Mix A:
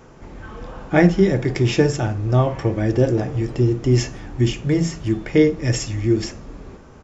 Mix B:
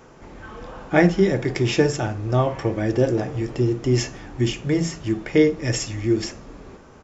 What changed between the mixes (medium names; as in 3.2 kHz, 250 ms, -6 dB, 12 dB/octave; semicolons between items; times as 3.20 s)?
background -6.5 dB; master: add bass shelf 200 Hz -6.5 dB